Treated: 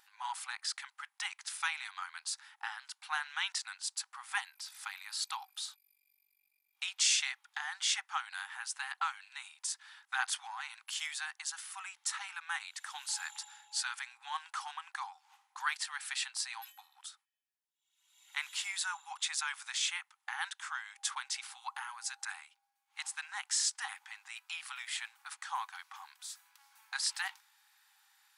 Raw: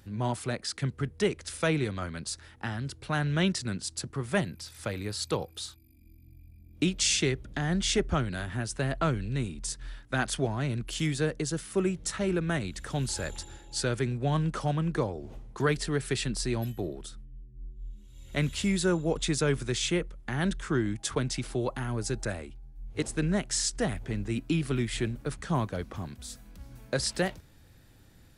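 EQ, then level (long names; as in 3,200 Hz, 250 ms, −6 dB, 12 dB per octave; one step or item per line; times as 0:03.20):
linear-phase brick-wall high-pass 760 Hz
−2.0 dB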